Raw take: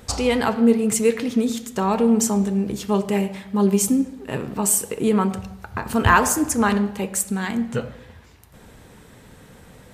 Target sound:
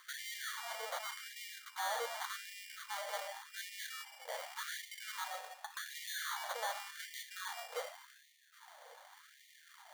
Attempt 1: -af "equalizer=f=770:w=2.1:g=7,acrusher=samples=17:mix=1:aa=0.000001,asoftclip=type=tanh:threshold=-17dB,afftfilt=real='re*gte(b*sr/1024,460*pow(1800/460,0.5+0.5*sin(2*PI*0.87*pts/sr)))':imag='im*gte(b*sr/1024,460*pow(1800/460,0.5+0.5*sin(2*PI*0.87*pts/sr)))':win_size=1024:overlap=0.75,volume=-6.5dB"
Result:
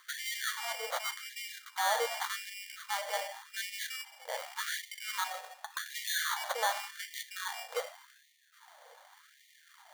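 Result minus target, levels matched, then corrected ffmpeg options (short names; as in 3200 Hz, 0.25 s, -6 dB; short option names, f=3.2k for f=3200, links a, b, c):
soft clip: distortion -6 dB
-af "equalizer=f=770:w=2.1:g=7,acrusher=samples=17:mix=1:aa=0.000001,asoftclip=type=tanh:threshold=-27.5dB,afftfilt=real='re*gte(b*sr/1024,460*pow(1800/460,0.5+0.5*sin(2*PI*0.87*pts/sr)))':imag='im*gte(b*sr/1024,460*pow(1800/460,0.5+0.5*sin(2*PI*0.87*pts/sr)))':win_size=1024:overlap=0.75,volume=-6.5dB"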